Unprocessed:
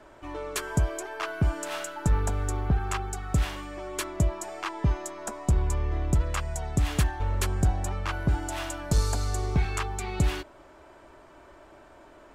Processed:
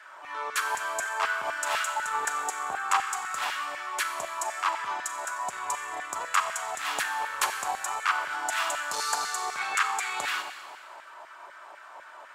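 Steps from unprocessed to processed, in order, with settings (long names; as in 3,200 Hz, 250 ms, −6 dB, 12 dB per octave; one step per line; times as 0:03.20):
transient designer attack −7 dB, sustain −2 dB
four-comb reverb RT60 1.7 s, combs from 30 ms, DRR 6 dB
auto-filter high-pass saw down 4 Hz 800–1,700 Hz
level +4.5 dB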